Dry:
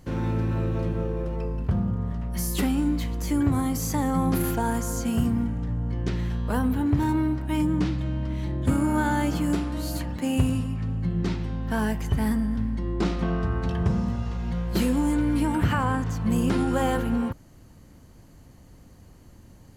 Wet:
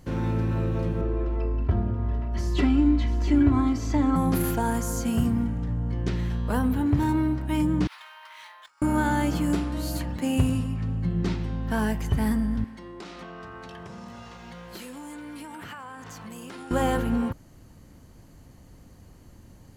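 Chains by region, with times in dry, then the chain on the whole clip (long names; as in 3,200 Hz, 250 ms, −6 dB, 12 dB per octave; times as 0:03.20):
0:01.01–0:04.16: high-frequency loss of the air 160 metres + comb filter 3 ms, depth 84% + single-tap delay 686 ms −12 dB
0:07.87–0:08.82: Butterworth high-pass 910 Hz + compressor whose output falls as the input rises −47 dBFS, ratio −0.5 + linearly interpolated sample-rate reduction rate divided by 3×
0:12.64–0:16.71: high-pass filter 820 Hz 6 dB per octave + downward compressor 5 to 1, threshold −37 dBFS
whole clip: no processing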